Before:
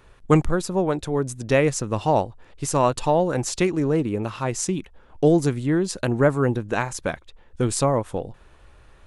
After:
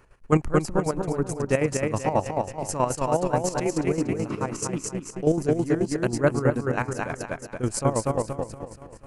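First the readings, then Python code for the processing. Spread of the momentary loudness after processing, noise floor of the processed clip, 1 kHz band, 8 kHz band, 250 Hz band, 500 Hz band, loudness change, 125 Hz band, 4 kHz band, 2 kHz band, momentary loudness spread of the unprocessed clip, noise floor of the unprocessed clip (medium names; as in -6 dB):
8 LU, -47 dBFS, -2.5 dB, -2.5 dB, -2.5 dB, -2.5 dB, -3.0 dB, -3.0 dB, -6.0 dB, -3.0 dB, 10 LU, -52 dBFS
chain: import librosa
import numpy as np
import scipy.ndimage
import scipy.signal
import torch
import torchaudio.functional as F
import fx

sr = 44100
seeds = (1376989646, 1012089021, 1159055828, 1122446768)

y = fx.peak_eq(x, sr, hz=3600.0, db=-14.5, octaves=0.27)
y = fx.echo_feedback(y, sr, ms=238, feedback_pct=50, wet_db=-3)
y = fx.chopper(y, sr, hz=9.3, depth_pct=65, duty_pct=45)
y = y * librosa.db_to_amplitude(-2.0)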